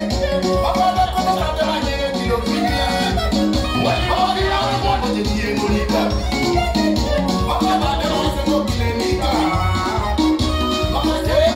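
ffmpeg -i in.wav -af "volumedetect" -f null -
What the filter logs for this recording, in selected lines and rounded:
mean_volume: -17.7 dB
max_volume: -4.4 dB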